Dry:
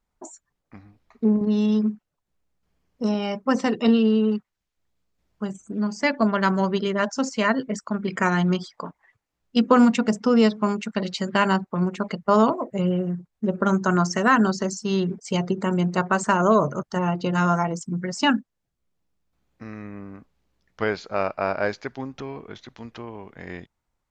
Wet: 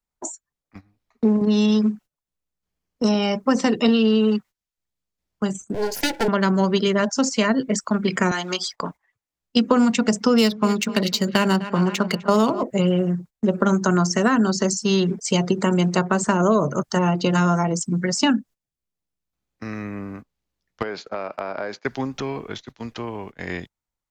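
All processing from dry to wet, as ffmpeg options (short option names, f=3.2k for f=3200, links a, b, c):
-filter_complex "[0:a]asettb=1/sr,asplit=3[a][b][c];[a]atrim=end=5.744[d];[b]atrim=start=5.74:end=6.28,asetpts=PTS-STARTPTS,afade=t=in:d=0.004:c=qsin,afade=t=out:st=0.536:d=0.004:c=qsin,aeval=exprs='abs(val(0))':c=same,asuperstop=centerf=1200:order=8:qfactor=4.1[e];[c]atrim=start=6.276[f];[d][e]acrossfade=d=0.004:c1=hsin:c2=qsin[g];[g][f]acrossfade=d=0.004:c1=qsin:c2=hsin,asettb=1/sr,asplit=3[h][i][j];[h]atrim=end=8.314[k];[i]atrim=start=8.31:end=8.73,asetpts=PTS-STARTPTS,afade=t=in:d=0.004:c=qsin,afade=t=out:st=0.416:d=0.004:c=qsin,highpass=560,highshelf=f=3.3k:g=8.5[l];[j]atrim=start=8.726[m];[k][l]acrossfade=d=0.004:c1=hsin:c2=qsin[n];[n][m]acrossfade=d=0.004:c1=qsin:c2=hsin,asettb=1/sr,asplit=3[o][p][q];[o]atrim=end=10.384[r];[p]atrim=start=10.38:end=12.63,asetpts=PTS-STARTPTS,afade=t=in:d=0.004:c=qsin,afade=t=out:st=2.246:d=0.004:c=qsin,highshelf=f=2.3k:g=10.5,asplit=2[s][t];[t]adelay=252,lowpass=f=3.9k:p=1,volume=-17dB,asplit=2[u][v];[v]adelay=252,lowpass=f=3.9k:p=1,volume=0.43,asplit=2[w][x];[x]adelay=252,lowpass=f=3.9k:p=1,volume=0.43,asplit=2[y][z];[z]adelay=252,lowpass=f=3.9k:p=1,volume=0.43[aa];[s][u][w][y][aa]amix=inputs=5:normalize=0,atrim=end_sample=99225,adynamicsmooth=sensitivity=4.5:basefreq=4.1k[ab];[q]atrim=start=12.626[ac];[r][ab]acrossfade=d=0.004:c1=hsin:c2=qsin[ad];[ad][ac]acrossfade=d=0.004:c1=qsin:c2=hsin,asettb=1/sr,asplit=3[ae][af][ag];[ae]atrim=end=20.824[ah];[af]atrim=start=20.82:end=21.85,asetpts=PTS-STARTPTS,afade=t=in:d=0.004:c=qsin,afade=t=out:st=1.026:d=0.004:c=qsin,highpass=200,highshelf=f=3.1k:g=-11.5,acompressor=threshold=-29dB:ratio=12:attack=3.2:release=140:knee=1:detection=peak[ai];[ag]atrim=start=21.846[aj];[ah][ai]acrossfade=d=0.004:c1=hsin:c2=qsin[ak];[ak][aj]acrossfade=d=0.004:c1=qsin:c2=hsin,agate=range=-17dB:threshold=-42dB:ratio=16:detection=peak,highshelf=f=3.4k:g=8.5,acrossover=split=140|530[al][am][an];[al]acompressor=threshold=-41dB:ratio=4[ao];[am]acompressor=threshold=-23dB:ratio=4[ap];[an]acompressor=threshold=-29dB:ratio=4[aq];[ao][ap][aq]amix=inputs=3:normalize=0,volume=6dB"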